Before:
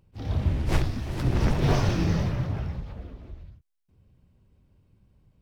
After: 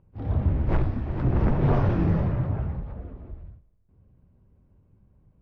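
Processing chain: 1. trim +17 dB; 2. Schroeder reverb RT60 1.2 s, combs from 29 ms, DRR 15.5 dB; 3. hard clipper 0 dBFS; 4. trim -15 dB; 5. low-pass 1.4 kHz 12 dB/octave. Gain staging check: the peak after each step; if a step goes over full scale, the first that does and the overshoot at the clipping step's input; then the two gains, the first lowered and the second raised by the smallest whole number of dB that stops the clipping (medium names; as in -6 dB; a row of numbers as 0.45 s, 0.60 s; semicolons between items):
+6.5 dBFS, +6.5 dBFS, 0.0 dBFS, -15.0 dBFS, -14.5 dBFS; step 1, 6.5 dB; step 1 +10 dB, step 4 -8 dB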